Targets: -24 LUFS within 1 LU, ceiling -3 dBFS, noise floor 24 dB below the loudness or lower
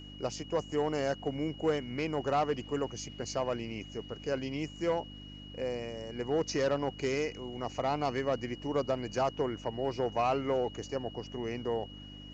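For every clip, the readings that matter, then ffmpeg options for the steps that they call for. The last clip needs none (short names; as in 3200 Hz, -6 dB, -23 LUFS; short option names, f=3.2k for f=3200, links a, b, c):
hum 50 Hz; harmonics up to 300 Hz; hum level -46 dBFS; steady tone 2900 Hz; tone level -50 dBFS; loudness -34.0 LUFS; peak -19.0 dBFS; loudness target -24.0 LUFS
-> -af "bandreject=f=50:t=h:w=4,bandreject=f=100:t=h:w=4,bandreject=f=150:t=h:w=4,bandreject=f=200:t=h:w=4,bandreject=f=250:t=h:w=4,bandreject=f=300:t=h:w=4"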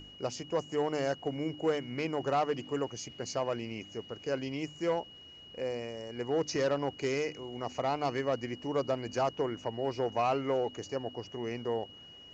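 hum none; steady tone 2900 Hz; tone level -50 dBFS
-> -af "bandreject=f=2.9k:w=30"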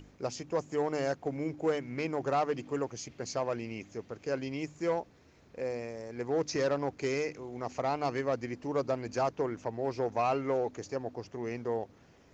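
steady tone none; loudness -34.0 LUFS; peak -19.5 dBFS; loudness target -24.0 LUFS
-> -af "volume=10dB"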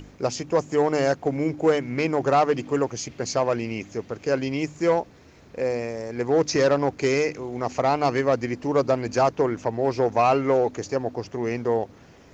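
loudness -24.0 LUFS; peak -9.5 dBFS; noise floor -50 dBFS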